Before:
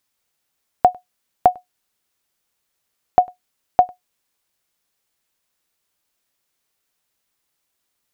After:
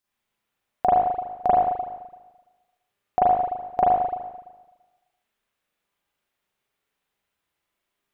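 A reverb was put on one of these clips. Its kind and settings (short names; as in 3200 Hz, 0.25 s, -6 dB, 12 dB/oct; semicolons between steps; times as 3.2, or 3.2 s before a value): spring tank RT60 1.2 s, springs 37/42 ms, chirp 75 ms, DRR -10 dB; gain -10.5 dB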